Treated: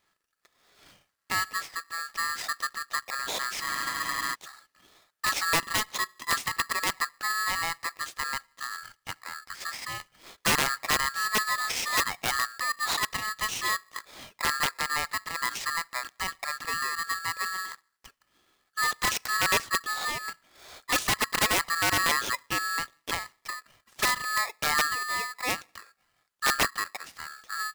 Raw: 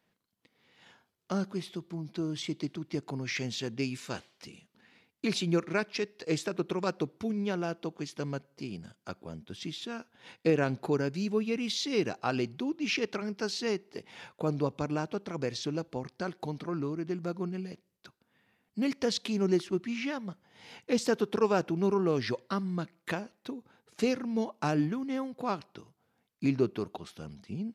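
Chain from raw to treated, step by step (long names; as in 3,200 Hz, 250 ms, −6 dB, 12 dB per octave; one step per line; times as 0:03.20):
wrap-around overflow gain 20 dB
frozen spectrum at 0:03.65, 0.68 s
ring modulator with a square carrier 1,500 Hz
level +2.5 dB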